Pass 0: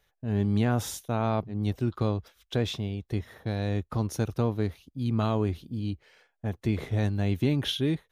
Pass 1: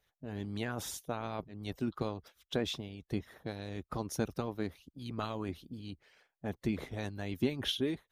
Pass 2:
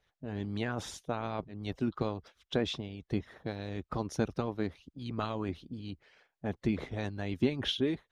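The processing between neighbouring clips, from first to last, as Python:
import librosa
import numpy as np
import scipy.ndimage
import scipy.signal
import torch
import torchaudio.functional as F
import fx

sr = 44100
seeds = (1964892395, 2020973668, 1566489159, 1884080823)

y1 = fx.hpss(x, sr, part='harmonic', gain_db=-14)
y1 = y1 * 10.0 ** (-2.0 / 20.0)
y2 = fx.air_absorb(y1, sr, metres=79.0)
y2 = y2 * 10.0 ** (3.0 / 20.0)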